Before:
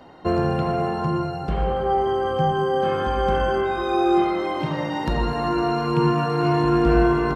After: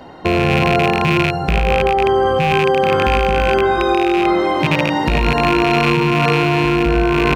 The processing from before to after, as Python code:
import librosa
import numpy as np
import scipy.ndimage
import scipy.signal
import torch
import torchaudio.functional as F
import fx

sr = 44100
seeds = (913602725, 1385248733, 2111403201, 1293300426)

p1 = fx.rattle_buzz(x, sr, strikes_db=-28.0, level_db=-14.0)
p2 = fx.peak_eq(p1, sr, hz=64.0, db=2.0, octaves=0.77)
p3 = fx.notch(p2, sr, hz=1200.0, q=26.0)
p4 = fx.over_compress(p3, sr, threshold_db=-22.0, ratio=-0.5)
y = p3 + F.gain(torch.from_numpy(p4), 2.5).numpy()